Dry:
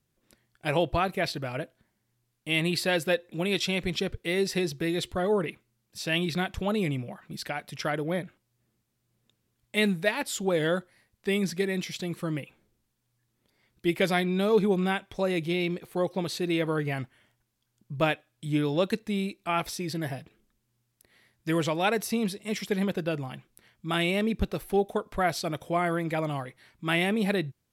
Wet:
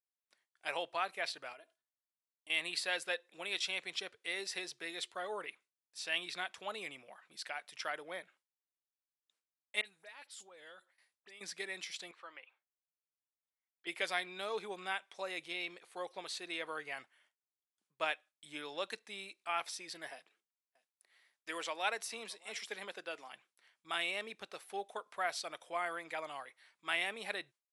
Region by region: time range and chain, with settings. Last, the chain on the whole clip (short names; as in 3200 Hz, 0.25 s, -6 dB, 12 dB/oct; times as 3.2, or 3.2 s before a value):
1.53–2.5 bell 1900 Hz -4.5 dB 1.1 oct + comb 2.9 ms, depth 62% + compressor 5:1, threshold -41 dBFS
9.81–11.41 compressor 3:1, threshold -45 dBFS + dispersion highs, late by 47 ms, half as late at 3000 Hz
12.11–13.87 BPF 800–4200 Hz + tilt -2.5 dB/oct
20.1–23.32 HPF 190 Hz 24 dB/oct + echo 0.624 s -24 dB
whole clip: HPF 820 Hz 12 dB/oct; gate with hold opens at -54 dBFS; steep low-pass 11000 Hz 96 dB/oct; gain -6.5 dB